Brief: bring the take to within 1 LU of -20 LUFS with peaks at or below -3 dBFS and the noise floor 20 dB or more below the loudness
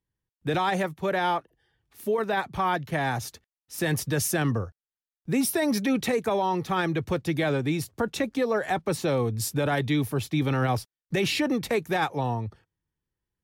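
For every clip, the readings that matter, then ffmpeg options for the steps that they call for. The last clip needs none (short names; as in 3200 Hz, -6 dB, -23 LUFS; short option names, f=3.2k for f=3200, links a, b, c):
loudness -27.0 LUFS; peak -15.5 dBFS; loudness target -20.0 LUFS
-> -af "volume=7dB"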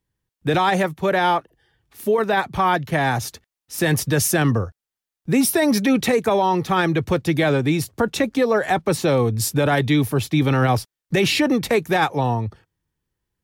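loudness -20.0 LUFS; peak -8.5 dBFS; noise floor -88 dBFS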